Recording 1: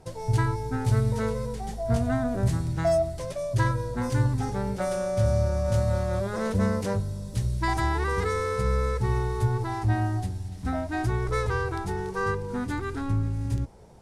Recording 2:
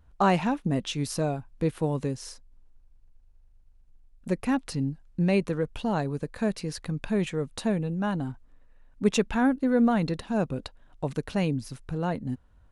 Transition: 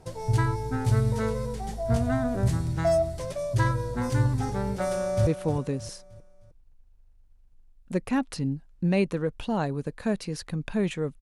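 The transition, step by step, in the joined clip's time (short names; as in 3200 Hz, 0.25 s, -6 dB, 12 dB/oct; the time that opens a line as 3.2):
recording 1
4.91–5.27 echo throw 0.31 s, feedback 40%, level -10.5 dB
5.27 switch to recording 2 from 1.63 s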